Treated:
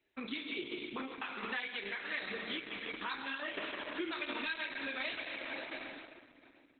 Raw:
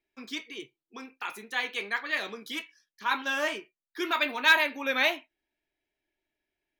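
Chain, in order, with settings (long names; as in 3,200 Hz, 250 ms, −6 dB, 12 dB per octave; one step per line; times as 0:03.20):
high-pass filter 80 Hz 6 dB per octave
convolution reverb RT60 2.3 s, pre-delay 7 ms, DRR 1.5 dB
shaped tremolo saw down 1.4 Hz, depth 50%
soft clipping −12 dBFS, distortion −20 dB
0:01.58–0:04.29: echo machine with several playback heads 92 ms, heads second and third, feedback 65%, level −20.5 dB
dynamic equaliser 840 Hz, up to −7 dB, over −42 dBFS, Q 0.77
downward compressor 8 to 1, threshold −41 dBFS, peak gain reduction 20 dB
level +6.5 dB
Opus 8 kbit/s 48,000 Hz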